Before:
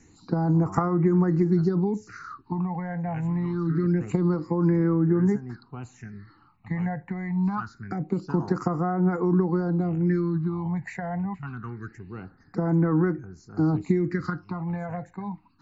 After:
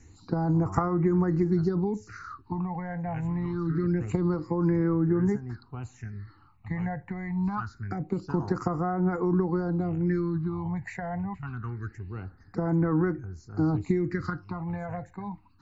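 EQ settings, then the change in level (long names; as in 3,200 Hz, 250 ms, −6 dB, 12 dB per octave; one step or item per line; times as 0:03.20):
low shelf with overshoot 120 Hz +8 dB, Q 1.5
−1.5 dB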